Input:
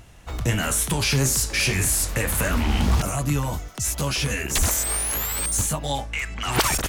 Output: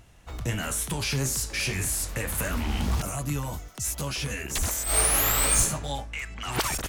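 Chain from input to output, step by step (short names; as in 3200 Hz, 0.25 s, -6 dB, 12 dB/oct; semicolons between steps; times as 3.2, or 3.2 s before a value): 2.38–4.02 high shelf 8200 Hz +4.5 dB; 4.84–5.59 reverb throw, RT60 1 s, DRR -11.5 dB; gain -6.5 dB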